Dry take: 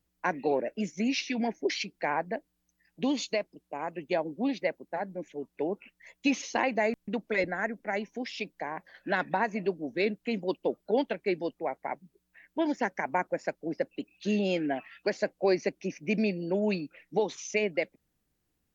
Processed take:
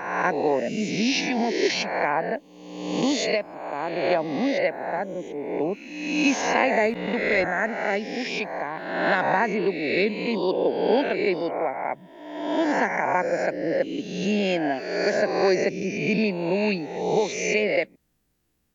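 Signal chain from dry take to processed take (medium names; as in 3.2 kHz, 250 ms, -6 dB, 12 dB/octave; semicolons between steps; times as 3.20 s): reverse spectral sustain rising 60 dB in 1.09 s; trim +3.5 dB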